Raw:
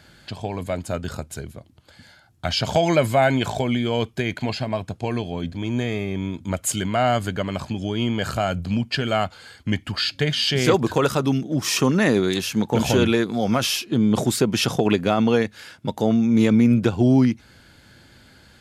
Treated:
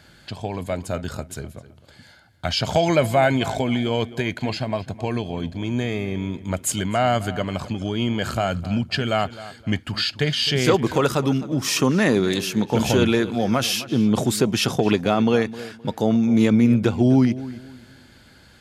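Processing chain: filtered feedback delay 260 ms, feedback 29%, low-pass 3.9 kHz, level -16 dB

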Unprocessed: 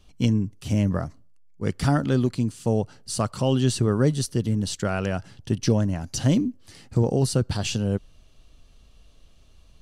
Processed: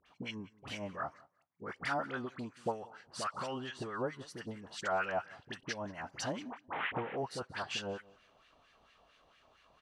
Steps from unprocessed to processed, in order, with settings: 6.48–7.12 s: one-bit delta coder 16 kbps, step -29 dBFS; compression, threshold -28 dBFS, peak gain reduction 12.5 dB; phase dispersion highs, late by 61 ms, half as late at 1.2 kHz; LFO band-pass sine 4.4 Hz 780–1900 Hz; feedback delay 184 ms, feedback 17%, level -23 dB; trim +9 dB

